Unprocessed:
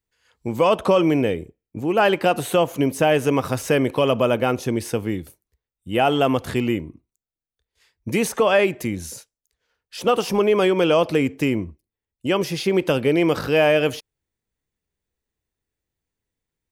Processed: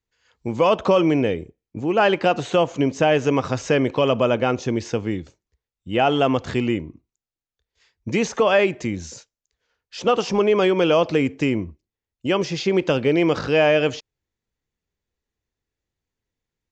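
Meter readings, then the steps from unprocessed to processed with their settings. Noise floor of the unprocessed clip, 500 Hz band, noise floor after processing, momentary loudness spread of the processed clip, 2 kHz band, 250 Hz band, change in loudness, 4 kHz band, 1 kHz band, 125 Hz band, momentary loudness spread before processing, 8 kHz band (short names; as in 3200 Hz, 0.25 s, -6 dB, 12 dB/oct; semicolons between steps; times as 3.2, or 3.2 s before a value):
under -85 dBFS, 0.0 dB, under -85 dBFS, 12 LU, 0.0 dB, 0.0 dB, 0.0 dB, 0.0 dB, 0.0 dB, 0.0 dB, 13 LU, -3.5 dB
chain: downsampling 16000 Hz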